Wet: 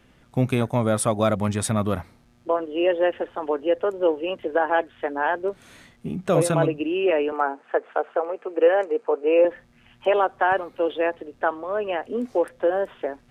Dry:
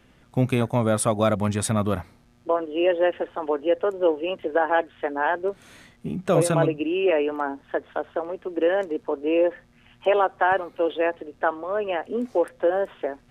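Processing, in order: 7.32–9.45 speaker cabinet 360–9500 Hz, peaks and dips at 470 Hz +7 dB, 770 Hz +6 dB, 1300 Hz +6 dB, 2400 Hz +5 dB, 3500 Hz -8 dB, 5500 Hz -5 dB

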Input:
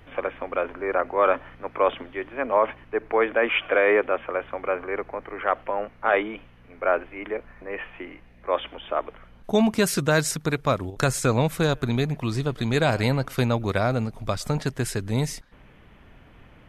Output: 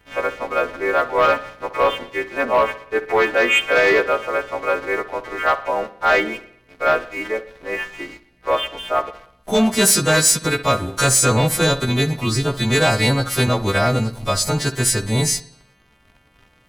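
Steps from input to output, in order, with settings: frequency quantiser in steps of 2 st; sample leveller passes 2; dark delay 62 ms, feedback 54%, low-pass 4000 Hz, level -13.5 dB; gain -1.5 dB

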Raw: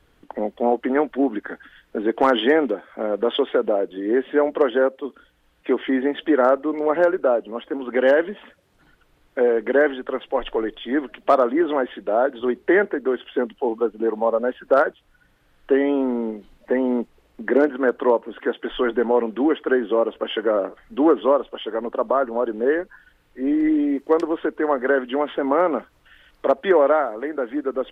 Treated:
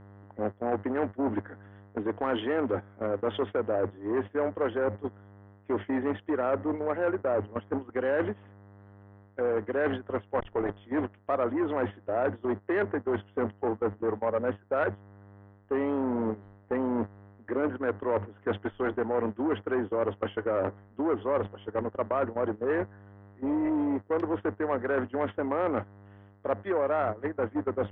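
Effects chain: buzz 100 Hz, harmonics 20, -37 dBFS -6 dB/oct; gate -25 dBFS, range -17 dB; in parallel at -1.5 dB: vocal rider within 4 dB 0.5 s; on the sum: LPF 2300 Hz 12 dB/oct; reverse; compressor 5:1, threshold -23 dBFS, peak gain reduction 15.5 dB; reverse; core saturation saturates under 690 Hz; gain -2 dB

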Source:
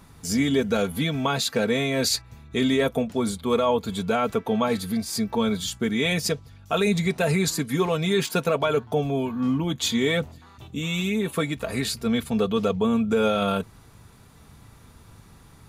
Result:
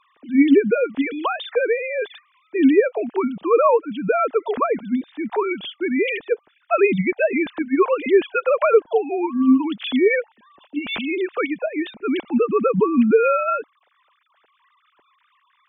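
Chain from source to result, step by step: sine-wave speech; gain +4.5 dB

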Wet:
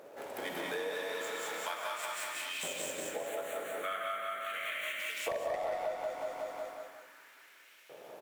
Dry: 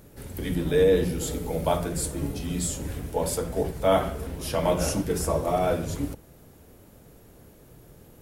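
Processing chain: median filter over 9 samples; LFO high-pass saw up 0.38 Hz 560–2800 Hz; wavefolder -13.5 dBFS; 2.73–5 fixed phaser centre 2200 Hz, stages 4; feedback echo 0.184 s, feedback 49%, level -3.5 dB; non-linear reverb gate 0.24 s rising, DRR 0 dB; compressor 6:1, threshold -37 dBFS, peak gain reduction 22.5 dB; gain +2 dB

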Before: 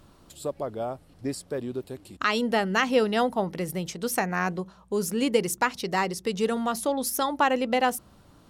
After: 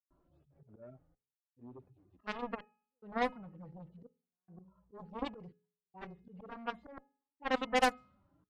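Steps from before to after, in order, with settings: median-filter separation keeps harmonic; step gate ".xxxxxxxxxx..." 144 bpm -60 dB; dynamic EQ 340 Hz, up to -6 dB, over -45 dBFS, Q 4.3; auto swell 0.106 s; on a send at -22 dB: reverb RT60 0.30 s, pre-delay 3 ms; on the sum: added harmonics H 5 -19 dB, 7 -11 dB, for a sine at -10 dBFS; low-pass opened by the level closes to 1200 Hz, open at -19 dBFS; de-hum 421 Hz, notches 7; gain -5 dB

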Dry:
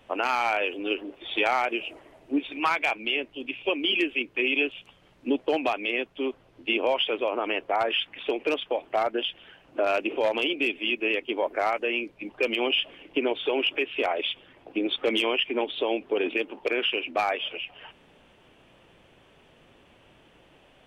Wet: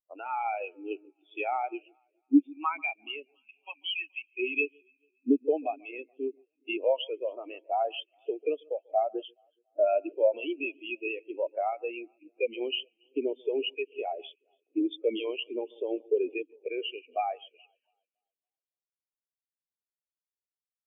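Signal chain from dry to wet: 3.36–4.29 resonant low shelf 600 Hz -10.5 dB, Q 3; echo with dull and thin repeats by turns 0.141 s, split 2400 Hz, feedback 77%, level -11.5 dB; spectral expander 2.5:1

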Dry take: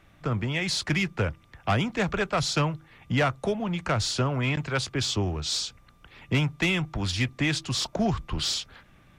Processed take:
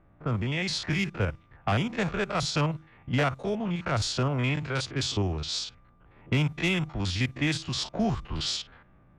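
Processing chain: stepped spectrum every 50 ms; low-pass opened by the level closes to 1000 Hz, open at -23 dBFS

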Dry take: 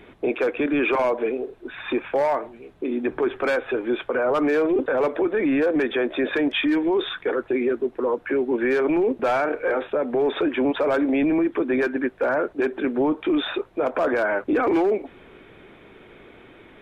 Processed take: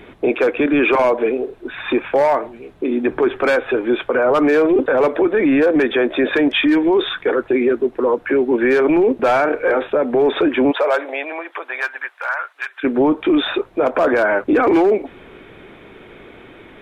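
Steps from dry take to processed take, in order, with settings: 10.71–12.83 HPF 440 Hz -> 1300 Hz 24 dB/oct; gain +6.5 dB

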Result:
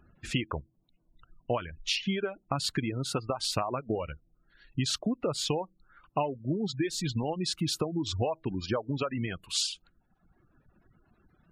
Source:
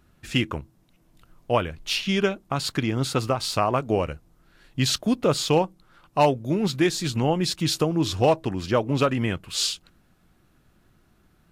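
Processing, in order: compressor 16:1, threshold -25 dBFS, peak gain reduction 12.5 dB; spectral gate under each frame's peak -25 dB strong; reverb removal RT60 1.5 s

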